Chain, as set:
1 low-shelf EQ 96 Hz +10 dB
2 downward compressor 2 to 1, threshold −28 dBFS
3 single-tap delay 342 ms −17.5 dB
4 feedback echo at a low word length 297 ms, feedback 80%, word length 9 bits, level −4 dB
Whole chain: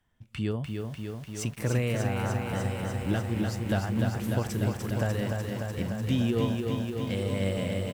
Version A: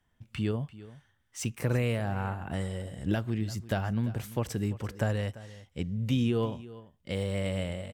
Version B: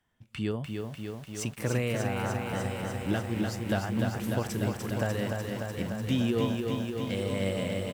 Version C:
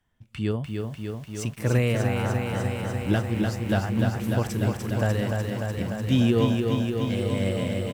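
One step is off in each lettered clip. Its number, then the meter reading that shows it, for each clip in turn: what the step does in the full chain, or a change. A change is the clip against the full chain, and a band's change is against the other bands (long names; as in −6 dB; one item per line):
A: 4, change in momentary loudness spread +8 LU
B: 1, 125 Hz band −3.5 dB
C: 2, 8 kHz band −3.0 dB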